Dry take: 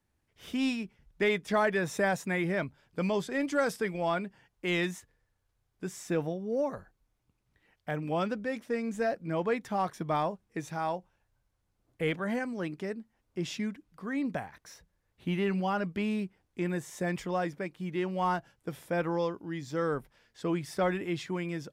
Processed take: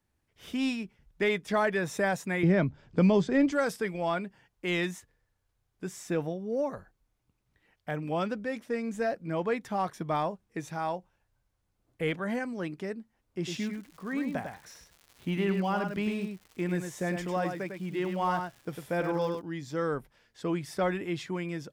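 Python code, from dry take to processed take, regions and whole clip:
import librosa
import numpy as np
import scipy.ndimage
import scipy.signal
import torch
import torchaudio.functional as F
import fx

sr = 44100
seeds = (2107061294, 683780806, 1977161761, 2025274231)

y = fx.chain(x, sr, fx.lowpass(hz=7300.0, slope=24),
    fx.low_shelf(hz=460.0, db=11.0),
    fx.band_squash(depth_pct=40), at=(2.43, 3.52))
y = fx.dmg_crackle(y, sr, seeds[0], per_s=180.0, level_db=-43.0, at=(13.46, 19.4), fade=0.02)
y = fx.echo_single(y, sr, ms=101, db=-6.0, at=(13.46, 19.4), fade=0.02)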